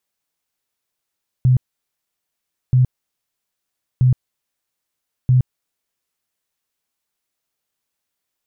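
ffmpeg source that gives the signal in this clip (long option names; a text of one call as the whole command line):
ffmpeg -f lavfi -i "aevalsrc='0.335*sin(2*PI*127*mod(t,1.28))*lt(mod(t,1.28),15/127)':duration=5.12:sample_rate=44100" out.wav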